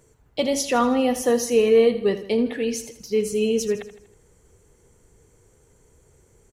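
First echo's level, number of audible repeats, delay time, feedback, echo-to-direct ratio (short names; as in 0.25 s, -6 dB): -13.0 dB, 4, 80 ms, 49%, -12.0 dB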